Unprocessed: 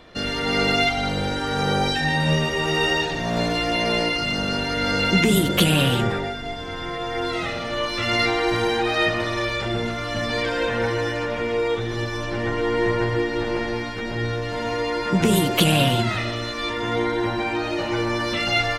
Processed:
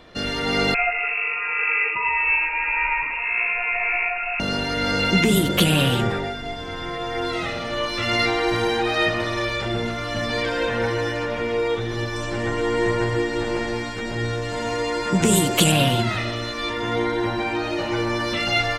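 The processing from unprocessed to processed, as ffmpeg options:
-filter_complex "[0:a]asettb=1/sr,asplit=3[a][b][c];[a]atrim=end=0.744[d];[b]atrim=start=0.74:end=4.4,asetpts=PTS-STARTPTS,afade=t=in:d=0.004:c=qsin,afade=t=out:st=3.656:d=0.004:c=qsin,lowpass=f=2.4k:t=q:w=0.5098,lowpass=f=2.4k:t=q:w=0.6013,lowpass=f=2.4k:t=q:w=0.9,lowpass=f=2.4k:t=q:w=2.563,afreqshift=-2800[e];[c]atrim=start=4.396[f];[d][e]acrossfade=d=0.004:c1=hsin:c2=qsin[g];[g][f]acrossfade=d=0.004:c1=qsin:c2=hsin,asettb=1/sr,asplit=3[h][i][j];[h]atrim=end=12.164[k];[i]atrim=start=12.16:end=15.72,asetpts=PTS-STARTPTS,afade=t=in:d=0.004:c=qsin,afade=t=out:st=3.556:d=0.004:c=qsin,equalizer=f=7.7k:t=o:w=0.49:g=11.5[l];[j]atrim=start=15.716[m];[k][l]acrossfade=d=0.004:c1=hsin:c2=qsin[n];[n][m]acrossfade=d=0.004:c1=qsin:c2=hsin"

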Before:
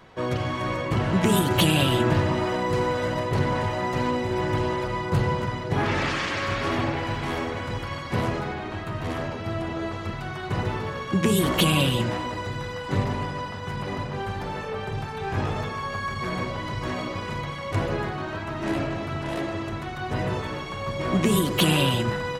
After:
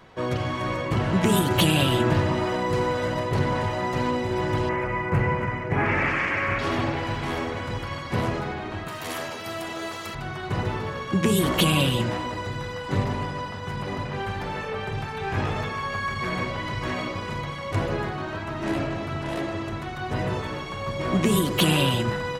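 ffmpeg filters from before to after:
-filter_complex "[0:a]asettb=1/sr,asplit=3[a][b][c];[a]atrim=end=4.694[d];[b]atrim=start=4.69:end=6.59,asetpts=PTS-STARTPTS,afade=t=in:d=0.004:c=qsin,afade=t=out:st=1.896:d=0.004:c=qsin,highshelf=f=2.9k:t=q:w=3:g=-8.5[e];[c]atrim=start=6.586[f];[d][e]acrossfade=d=0.004:c1=hsin:c2=qsin[g];[g][f]acrossfade=d=0.004:c1=qsin:c2=hsin,asettb=1/sr,asplit=3[h][i][j];[h]atrim=end=8.884[k];[i]atrim=start=8.88:end=10.15,asetpts=PTS-STARTPTS,afade=t=in:d=0.004:c=qsin,afade=t=out:st=1.266:d=0.004:c=qsin,aemphasis=mode=production:type=riaa[l];[j]atrim=start=10.146[m];[k][l]acrossfade=d=0.004:c1=hsin:c2=qsin[n];[n][m]acrossfade=d=0.004:c1=qsin:c2=hsin,asettb=1/sr,asplit=3[o][p][q];[o]atrim=end=14.054[r];[p]atrim=start=14.05:end=17.11,asetpts=PTS-STARTPTS,afade=t=in:d=0.004:c=qsin,afade=t=out:st=3.056:d=0.004:c=qsin,equalizer=f=2.2k:w=1.1:g=4[s];[q]atrim=start=17.106[t];[r][s]acrossfade=d=0.004:c1=hsin:c2=qsin[u];[u][t]acrossfade=d=0.004:c1=qsin:c2=hsin"

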